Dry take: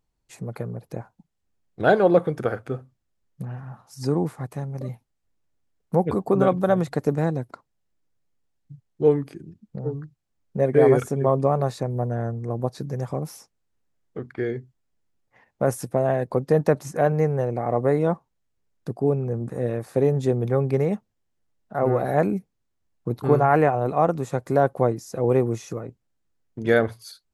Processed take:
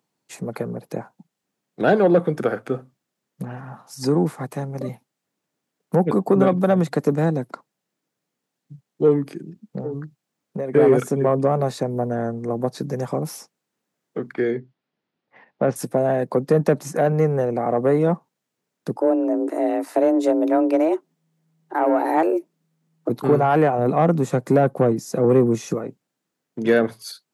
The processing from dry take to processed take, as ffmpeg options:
ffmpeg -i in.wav -filter_complex "[0:a]asettb=1/sr,asplit=3[link_01][link_02][link_03];[link_01]atrim=end=9.804[link_04];[link_02]atrim=start=9.8:end=10.75,asetpts=PTS-STARTPTS,afade=type=in:duration=0.004:curve=qsin,afade=type=out:start_time=0.946:duration=0.004:curve=qsin,acompressor=threshold=-28dB:ratio=6:attack=3.2:release=140:knee=1:detection=peak[link_05];[link_03]atrim=start=10.746[link_06];[link_04][link_05]acrossfade=duration=0.004:curve1=hsin:curve2=qsin[link_07];[link_07][link_06]acrossfade=duration=0.004:curve1=qsin:curve2=hsin,asettb=1/sr,asplit=3[link_08][link_09][link_10];[link_08]atrim=end=14.554[link_11];[link_09]atrim=start=14.55:end=15.76,asetpts=PTS-STARTPTS,afade=type=in:duration=0.004:curve=qsin,afade=type=out:start_time=1.206:duration=0.004:curve=qsin,lowpass=frequency=4400:width=0.5412,lowpass=frequency=4400:width=1.3066[link_12];[link_10]atrim=start=15.756[link_13];[link_11][link_12]acrossfade=duration=0.004:curve1=hsin:curve2=qsin[link_14];[link_14][link_13]acrossfade=duration=0.004:curve1=qsin:curve2=hsin,asettb=1/sr,asplit=3[link_15][link_16][link_17];[link_15]atrim=end=18.954[link_18];[link_16]atrim=start=18.95:end=23.09,asetpts=PTS-STARTPTS,afade=type=in:duration=0.004:curve=qsin,afade=type=out:start_time=4.136:duration=0.004:curve=qsin,afreqshift=160[link_19];[link_17]atrim=start=23.086[link_20];[link_18][link_19]acrossfade=duration=0.004:curve1=hsin:curve2=qsin[link_21];[link_21][link_20]acrossfade=duration=0.004:curve1=qsin:curve2=hsin,asettb=1/sr,asplit=3[link_22][link_23][link_24];[link_22]atrim=end=23.784[link_25];[link_23]atrim=start=23.78:end=25.75,asetpts=PTS-STARTPTS,afade=type=in:duration=0.004:curve=qsin,afade=type=out:start_time=1.966:duration=0.004:curve=qsin,equalizer=frequency=110:width=0.35:gain=6[link_26];[link_24]atrim=start=25.746[link_27];[link_25][link_26]acrossfade=duration=0.004:curve1=hsin:curve2=qsin[link_28];[link_28][link_27]acrossfade=duration=0.004:curve1=qsin:curve2=hsin,acontrast=76,highpass=frequency=160:width=0.5412,highpass=frequency=160:width=1.3066,acrossover=split=310[link_29][link_30];[link_30]acompressor=threshold=-25dB:ratio=1.5[link_31];[link_29][link_31]amix=inputs=2:normalize=0" out.wav

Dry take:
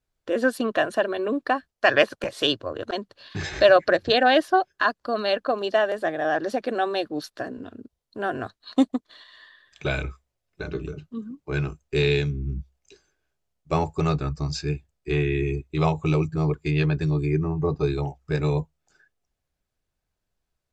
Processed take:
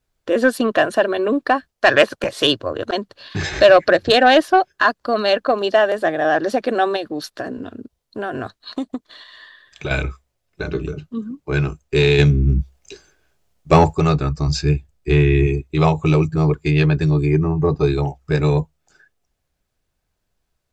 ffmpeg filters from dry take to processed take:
ffmpeg -i in.wav -filter_complex "[0:a]asettb=1/sr,asplit=3[link_01][link_02][link_03];[link_01]atrim=end=6.964[link_04];[link_02]atrim=start=6.96:end=9.91,asetpts=PTS-STARTPTS,afade=type=in:duration=0.004:curve=qsin,afade=type=out:start_time=2.946:duration=0.004:curve=qsin,acompressor=threshold=-28dB:ratio=6:attack=3.2:release=140:knee=1:detection=peak[link_05];[link_03]atrim=start=9.906[link_06];[link_04][link_05]acrossfade=duration=0.004:curve1=hsin:curve2=qsin[link_07];[link_07][link_06]acrossfade=duration=0.004:curve1=qsin:curve2=hsin,asplit=3[link_08][link_09][link_10];[link_08]afade=type=out:start_time=12.18:duration=0.02[link_11];[link_09]acontrast=70,afade=type=in:start_time=12.18:duration=0.02,afade=type=out:start_time=13.93:duration=0.02[link_12];[link_10]afade=type=in:start_time=13.93:duration=0.02[link_13];[link_11][link_12][link_13]amix=inputs=3:normalize=0,asettb=1/sr,asplit=3[link_14][link_15][link_16];[link_14]atrim=end=14.474[link_17];[link_15]atrim=start=14.47:end=15.47,asetpts=PTS-STARTPTS,afade=type=in:duration=0.004:curve=qsin,afade=type=out:start_time=0.996:duration=0.004:curve=qsin,lowshelf=frequency=130:gain=8[link_18];[link_16]atrim=start=15.466[link_19];[link_17][link_18]acrossfade=duration=0.004:curve1=hsin:curve2=qsin[link_20];[link_20][link_19]acrossfade=duration=0.004:curve1=qsin:curve2=hsin,acontrast=83" out.wav

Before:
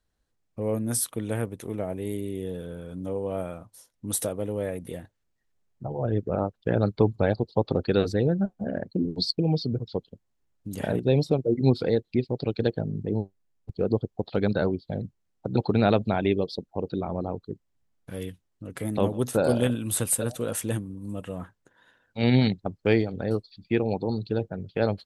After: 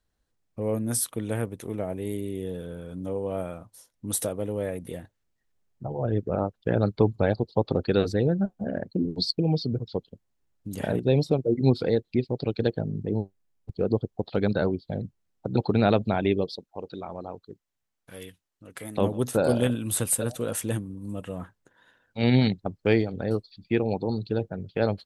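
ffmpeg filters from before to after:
ffmpeg -i in.wav -filter_complex "[0:a]asettb=1/sr,asplit=3[link_01][link_02][link_03];[link_01]atrim=end=16.534[link_04];[link_02]atrim=start=16.53:end=18.98,asetpts=PTS-STARTPTS,afade=type=in:duration=0.004:curve=qsin,afade=type=out:start_time=2.446:duration=0.004:curve=qsin,lowshelf=frequency=490:gain=-12[link_05];[link_03]atrim=start=18.976[link_06];[link_04][link_05]acrossfade=duration=0.004:curve1=hsin:curve2=qsin[link_07];[link_07][link_06]acrossfade=duration=0.004:curve1=qsin:curve2=hsin" out.wav

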